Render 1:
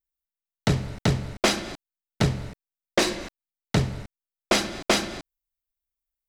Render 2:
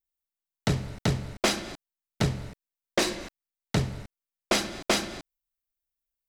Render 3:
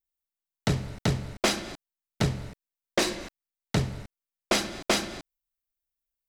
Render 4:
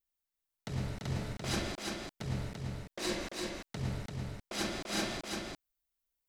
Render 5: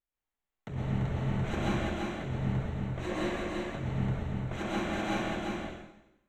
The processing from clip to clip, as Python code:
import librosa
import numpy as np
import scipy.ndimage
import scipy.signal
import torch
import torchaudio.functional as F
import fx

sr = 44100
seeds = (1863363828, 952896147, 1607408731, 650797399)

y1 = fx.high_shelf(x, sr, hz=8600.0, db=4.0)
y1 = y1 * librosa.db_to_amplitude(-3.5)
y2 = y1
y3 = fx.over_compress(y2, sr, threshold_db=-31.0, ratio=-1.0)
y3 = y3 + 10.0 ** (-3.5 / 20.0) * np.pad(y3, (int(340 * sr / 1000.0), 0))[:len(y3)]
y3 = y3 * librosa.db_to_amplitude(-4.5)
y4 = np.convolve(y3, np.full(9, 1.0 / 9))[:len(y3)]
y4 = fx.rev_plate(y4, sr, seeds[0], rt60_s=0.93, hf_ratio=1.0, predelay_ms=110, drr_db=-5.0)